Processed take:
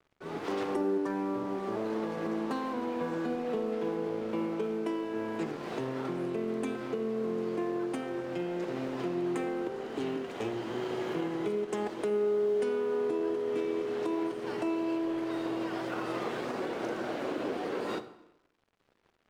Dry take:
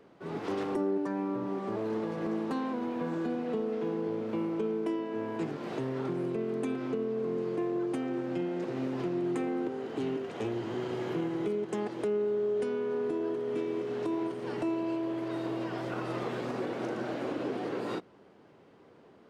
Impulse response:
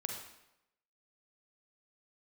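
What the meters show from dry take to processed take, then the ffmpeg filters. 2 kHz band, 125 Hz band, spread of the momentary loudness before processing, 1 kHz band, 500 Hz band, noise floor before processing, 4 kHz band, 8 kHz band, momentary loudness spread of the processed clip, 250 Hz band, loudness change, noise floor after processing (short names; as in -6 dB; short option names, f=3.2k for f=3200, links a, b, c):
+2.5 dB, -3.5 dB, 4 LU, +1.5 dB, +0.5 dB, -57 dBFS, +2.5 dB, n/a, 5 LU, -1.0 dB, 0.0 dB, -71 dBFS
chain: -filter_complex "[0:a]lowshelf=f=290:g=-10.5,aeval=exprs='sgn(val(0))*max(abs(val(0))-0.0015,0)':c=same,asplit=2[a][b];[1:a]atrim=start_sample=2205,lowshelf=f=370:g=8.5[c];[b][c]afir=irnorm=-1:irlink=0,volume=-6.5dB[d];[a][d]amix=inputs=2:normalize=0"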